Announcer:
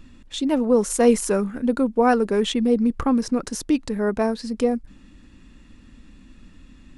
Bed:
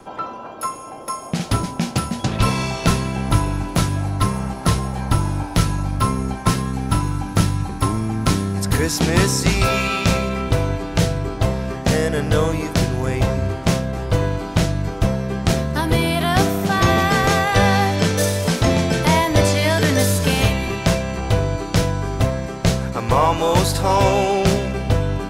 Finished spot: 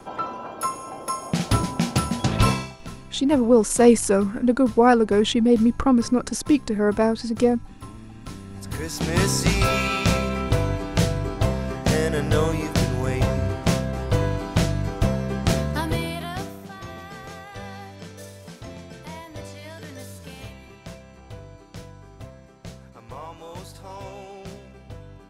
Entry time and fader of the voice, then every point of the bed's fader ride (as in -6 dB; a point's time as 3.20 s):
2.80 s, +2.0 dB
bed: 2.51 s -1 dB
2.78 s -21 dB
8.25 s -21 dB
9.30 s -3 dB
15.69 s -3 dB
16.81 s -22 dB